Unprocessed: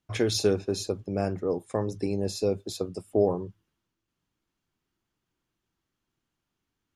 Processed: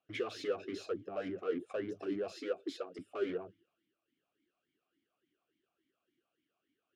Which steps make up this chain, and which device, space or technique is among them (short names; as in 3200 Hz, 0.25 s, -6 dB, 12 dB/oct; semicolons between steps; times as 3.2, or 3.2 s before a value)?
talk box (tube stage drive 37 dB, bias 0.25; vowel sweep a-i 3.5 Hz); 2.32–2.99 HPF 290 Hz 12 dB/oct; gain +12.5 dB